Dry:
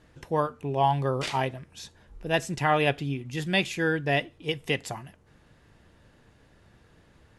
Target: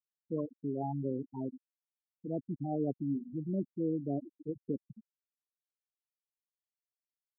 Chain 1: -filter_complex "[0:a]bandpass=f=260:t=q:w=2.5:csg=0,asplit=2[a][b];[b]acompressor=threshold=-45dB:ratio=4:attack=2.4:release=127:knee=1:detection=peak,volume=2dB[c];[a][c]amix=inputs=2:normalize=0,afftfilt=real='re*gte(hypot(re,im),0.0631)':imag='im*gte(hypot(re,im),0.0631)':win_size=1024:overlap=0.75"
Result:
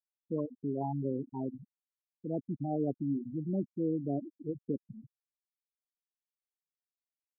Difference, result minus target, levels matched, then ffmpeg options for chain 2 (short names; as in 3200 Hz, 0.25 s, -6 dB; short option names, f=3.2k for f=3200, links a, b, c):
compressor: peak gain reduction -6 dB
-filter_complex "[0:a]bandpass=f=260:t=q:w=2.5:csg=0,asplit=2[a][b];[b]acompressor=threshold=-53dB:ratio=4:attack=2.4:release=127:knee=1:detection=peak,volume=2dB[c];[a][c]amix=inputs=2:normalize=0,afftfilt=real='re*gte(hypot(re,im),0.0631)':imag='im*gte(hypot(re,im),0.0631)':win_size=1024:overlap=0.75"